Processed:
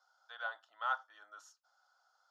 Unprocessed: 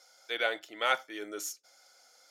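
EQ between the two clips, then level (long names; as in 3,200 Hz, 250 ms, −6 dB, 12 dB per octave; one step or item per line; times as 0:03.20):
four-pole ladder band-pass 1,400 Hz, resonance 30%
phaser with its sweep stopped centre 920 Hz, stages 4
+7.0 dB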